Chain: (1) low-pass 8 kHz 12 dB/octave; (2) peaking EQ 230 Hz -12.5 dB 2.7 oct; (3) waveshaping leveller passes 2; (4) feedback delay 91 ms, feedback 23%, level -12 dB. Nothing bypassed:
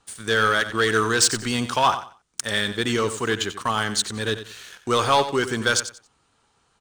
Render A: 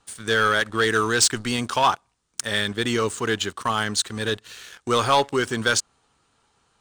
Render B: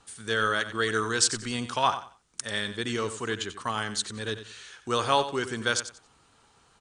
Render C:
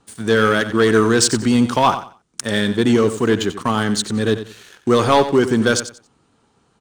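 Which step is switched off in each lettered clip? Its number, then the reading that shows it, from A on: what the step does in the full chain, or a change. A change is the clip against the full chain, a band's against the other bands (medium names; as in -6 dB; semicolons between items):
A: 4, momentary loudness spread change -2 LU; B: 3, crest factor change +5.5 dB; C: 2, 250 Hz band +10.0 dB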